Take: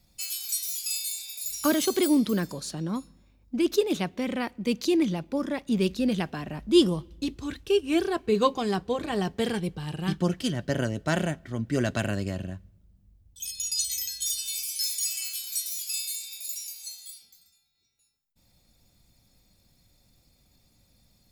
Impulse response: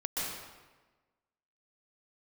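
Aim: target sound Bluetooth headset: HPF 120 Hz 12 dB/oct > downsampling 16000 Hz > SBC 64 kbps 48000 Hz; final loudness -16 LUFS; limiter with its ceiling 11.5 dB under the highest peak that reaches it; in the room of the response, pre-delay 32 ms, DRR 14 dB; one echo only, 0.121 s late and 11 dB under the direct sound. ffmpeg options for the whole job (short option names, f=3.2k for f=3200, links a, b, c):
-filter_complex "[0:a]alimiter=limit=-19.5dB:level=0:latency=1,aecho=1:1:121:0.282,asplit=2[a][b];[1:a]atrim=start_sample=2205,adelay=32[c];[b][c]afir=irnorm=-1:irlink=0,volume=-19.5dB[d];[a][d]amix=inputs=2:normalize=0,highpass=120,aresample=16000,aresample=44100,volume=15dB" -ar 48000 -c:a sbc -b:a 64k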